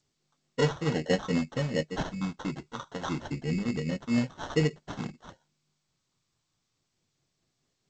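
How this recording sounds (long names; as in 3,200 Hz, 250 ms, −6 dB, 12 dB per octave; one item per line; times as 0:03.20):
tremolo triangle 4.6 Hz, depth 60%
phaser sweep stages 8, 0.28 Hz, lowest notch 620–2,200 Hz
aliases and images of a low sample rate 2,400 Hz, jitter 0%
G.722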